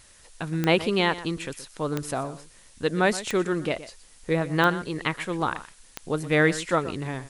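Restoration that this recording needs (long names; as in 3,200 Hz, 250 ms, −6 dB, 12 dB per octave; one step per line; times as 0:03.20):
click removal
broadband denoise 18 dB, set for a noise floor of −52 dBFS
echo removal 122 ms −15.5 dB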